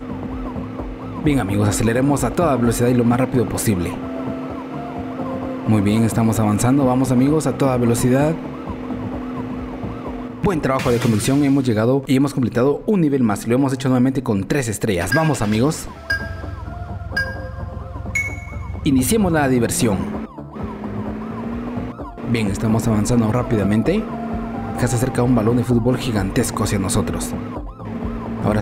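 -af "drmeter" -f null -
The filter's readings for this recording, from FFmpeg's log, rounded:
Channel 1: DR: 9.2
Overall DR: 9.2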